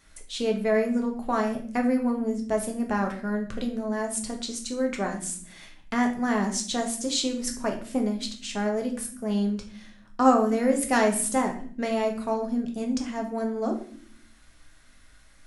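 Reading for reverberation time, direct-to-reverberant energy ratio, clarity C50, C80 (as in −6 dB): 0.55 s, 2.0 dB, 9.5 dB, 13.0 dB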